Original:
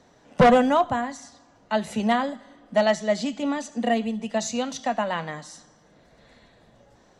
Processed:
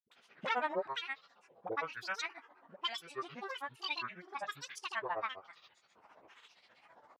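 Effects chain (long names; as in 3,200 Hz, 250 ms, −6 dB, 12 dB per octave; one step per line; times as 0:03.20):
dynamic equaliser 2,000 Hz, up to +7 dB, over −41 dBFS, Q 1.7
auto-filter band-pass sine 1.1 Hz 900–2,900 Hz
all-pass dispersion highs, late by 41 ms, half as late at 640 Hz
granular cloud, grains 15 per second, pitch spread up and down by 12 semitones
multiband upward and downward compressor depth 40%
level −4 dB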